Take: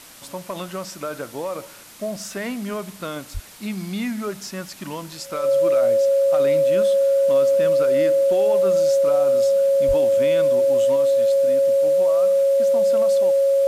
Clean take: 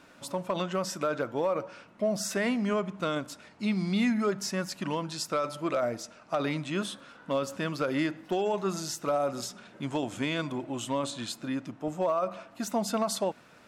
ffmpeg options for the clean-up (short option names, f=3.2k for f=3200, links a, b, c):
-filter_complex "[0:a]bandreject=f=550:w=30,asplit=3[a][b][c];[a]afade=t=out:st=3.33:d=0.02[d];[b]highpass=f=140:w=0.5412,highpass=f=140:w=1.3066,afade=t=in:st=3.33:d=0.02,afade=t=out:st=3.45:d=0.02[e];[c]afade=t=in:st=3.45:d=0.02[f];[d][e][f]amix=inputs=3:normalize=0,asplit=3[g][h][i];[g]afade=t=out:st=9.87:d=0.02[j];[h]highpass=f=140:w=0.5412,highpass=f=140:w=1.3066,afade=t=in:st=9.87:d=0.02,afade=t=out:st=9.99:d=0.02[k];[i]afade=t=in:st=9.99:d=0.02[l];[j][k][l]amix=inputs=3:normalize=0,afwtdn=0.0071,asetnsamples=n=441:p=0,asendcmd='10.96 volume volume 4.5dB',volume=0dB"